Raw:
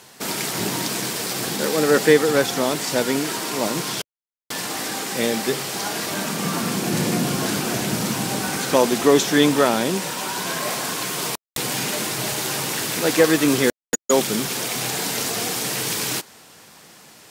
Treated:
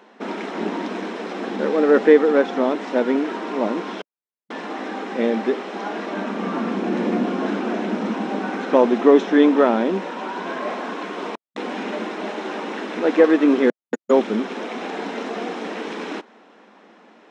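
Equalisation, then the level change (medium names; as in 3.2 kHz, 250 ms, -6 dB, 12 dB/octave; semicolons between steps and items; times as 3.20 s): brick-wall FIR high-pass 190 Hz; tape spacing loss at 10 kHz 43 dB; band-stop 4.6 kHz, Q 8.5; +4.5 dB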